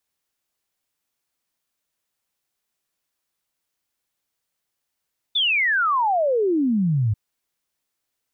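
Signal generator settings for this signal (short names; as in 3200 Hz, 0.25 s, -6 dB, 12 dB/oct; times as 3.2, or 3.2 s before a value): log sweep 3600 Hz -> 100 Hz 1.79 s -17 dBFS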